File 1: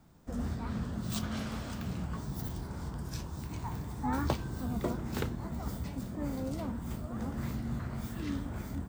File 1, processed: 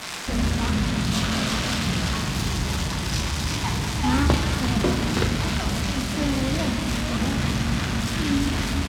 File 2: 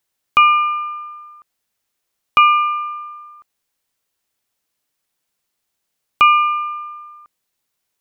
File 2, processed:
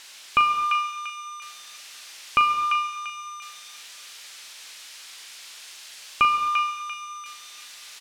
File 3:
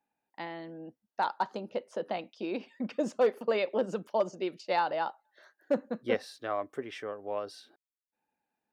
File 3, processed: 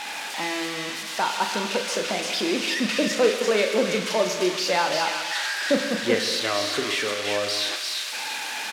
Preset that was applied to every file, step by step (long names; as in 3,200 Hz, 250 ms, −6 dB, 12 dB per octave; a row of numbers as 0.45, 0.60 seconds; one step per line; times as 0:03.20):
spike at every zero crossing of −19.5 dBFS
low-pass filter 3,700 Hz 12 dB per octave
dynamic equaliser 750 Hz, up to −6 dB, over −40 dBFS, Q 1.2
double-tracking delay 39 ms −8.5 dB
on a send: delay with a high-pass on its return 343 ms, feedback 36%, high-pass 1,400 Hz, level −3.5 dB
on the sum: reverb whose tail is shaped and stops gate 290 ms flat, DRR 7 dB
loudness normalisation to −24 LKFS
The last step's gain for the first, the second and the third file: +11.0, −5.0, +8.5 decibels